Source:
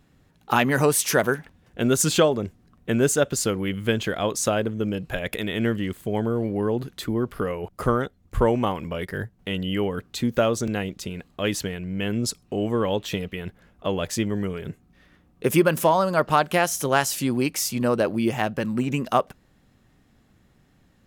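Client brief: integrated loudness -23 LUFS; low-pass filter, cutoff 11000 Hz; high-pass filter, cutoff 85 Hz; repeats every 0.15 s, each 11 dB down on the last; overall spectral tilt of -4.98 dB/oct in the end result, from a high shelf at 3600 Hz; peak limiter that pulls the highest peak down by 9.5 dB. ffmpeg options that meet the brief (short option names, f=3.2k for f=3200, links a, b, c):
-af "highpass=85,lowpass=11k,highshelf=f=3.6k:g=-4.5,alimiter=limit=-14.5dB:level=0:latency=1,aecho=1:1:150|300|450:0.282|0.0789|0.0221,volume=4dB"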